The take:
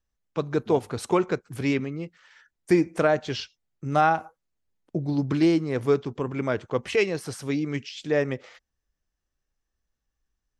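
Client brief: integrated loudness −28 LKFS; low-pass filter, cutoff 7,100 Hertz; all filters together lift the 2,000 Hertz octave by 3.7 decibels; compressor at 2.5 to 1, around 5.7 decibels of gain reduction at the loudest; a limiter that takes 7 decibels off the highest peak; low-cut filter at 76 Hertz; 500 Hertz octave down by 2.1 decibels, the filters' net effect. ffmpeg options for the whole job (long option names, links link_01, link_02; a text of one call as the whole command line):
ffmpeg -i in.wav -af "highpass=76,lowpass=7100,equalizer=frequency=500:width_type=o:gain=-3,equalizer=frequency=2000:width_type=o:gain=5,acompressor=threshold=-24dB:ratio=2.5,volume=4dB,alimiter=limit=-14dB:level=0:latency=1" out.wav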